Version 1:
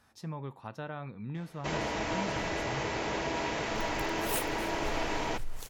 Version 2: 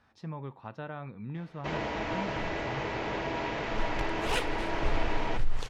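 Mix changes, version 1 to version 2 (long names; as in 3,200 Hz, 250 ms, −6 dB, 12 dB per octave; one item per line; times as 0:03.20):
second sound +10.0 dB
master: add low-pass filter 3,600 Hz 12 dB per octave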